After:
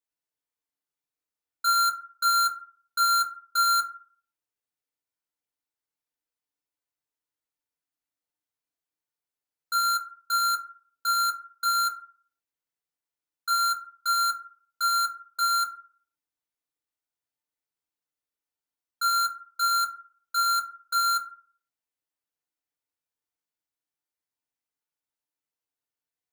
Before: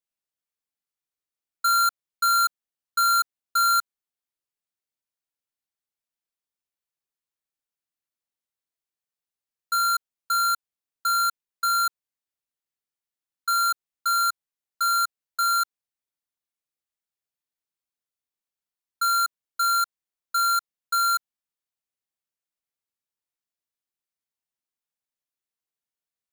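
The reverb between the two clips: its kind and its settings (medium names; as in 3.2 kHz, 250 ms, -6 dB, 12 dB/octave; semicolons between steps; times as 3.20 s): FDN reverb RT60 0.46 s, low-frequency decay 0.75×, high-frequency decay 0.4×, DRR -1.5 dB; trim -4 dB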